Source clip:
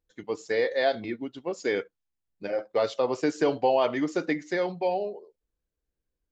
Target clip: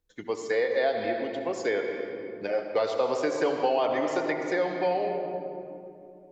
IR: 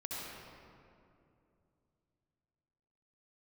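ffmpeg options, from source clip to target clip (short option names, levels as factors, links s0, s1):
-filter_complex "[0:a]asplit=2[s0][s1];[1:a]atrim=start_sample=2205[s2];[s1][s2]afir=irnorm=-1:irlink=0,volume=0.708[s3];[s0][s3]amix=inputs=2:normalize=0,acrossover=split=410|1900[s4][s5][s6];[s4]acompressor=threshold=0.0126:ratio=4[s7];[s5]acompressor=threshold=0.0708:ratio=4[s8];[s6]acompressor=threshold=0.00891:ratio=4[s9];[s7][s8][s9]amix=inputs=3:normalize=0"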